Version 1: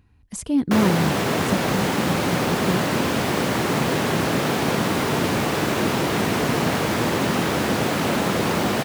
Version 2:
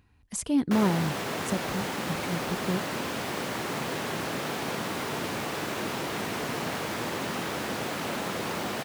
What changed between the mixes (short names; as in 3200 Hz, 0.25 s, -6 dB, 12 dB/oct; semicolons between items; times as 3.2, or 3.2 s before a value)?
background -8.0 dB; master: add low shelf 380 Hz -6.5 dB